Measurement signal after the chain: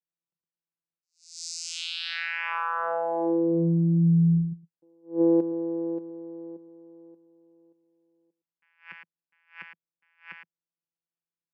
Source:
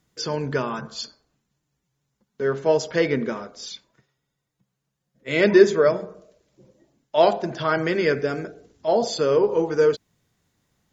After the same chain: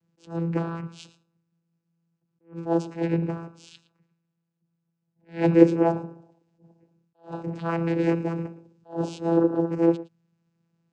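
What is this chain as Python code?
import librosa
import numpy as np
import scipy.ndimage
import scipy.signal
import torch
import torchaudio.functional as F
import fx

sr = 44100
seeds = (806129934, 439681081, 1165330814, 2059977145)

y = fx.vocoder(x, sr, bands=8, carrier='saw', carrier_hz=167.0)
y = y + 10.0 ** (-17.5 / 20.0) * np.pad(y, (int(113 * sr / 1000.0), 0))[:len(y)]
y = fx.attack_slew(y, sr, db_per_s=210.0)
y = y * 10.0 ** (-1.0 / 20.0)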